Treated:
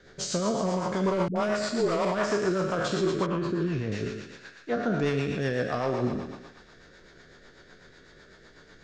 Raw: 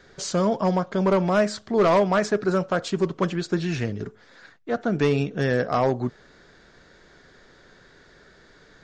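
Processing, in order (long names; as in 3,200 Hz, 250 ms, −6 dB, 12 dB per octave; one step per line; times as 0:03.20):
peak hold with a decay on every bin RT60 0.89 s
brickwall limiter −16 dBFS, peak gain reduction 8 dB
on a send: feedback echo with a high-pass in the loop 114 ms, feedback 73%, high-pass 690 Hz, level −8 dB
on the sum: rotating-speaker cabinet horn 8 Hz
0:01.28–0:02.05: all-pass dispersion highs, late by 77 ms, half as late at 400 Hz
0:03.26–0:03.92: low-pass filter 1,000 Hz 6 dB per octave
level −1 dB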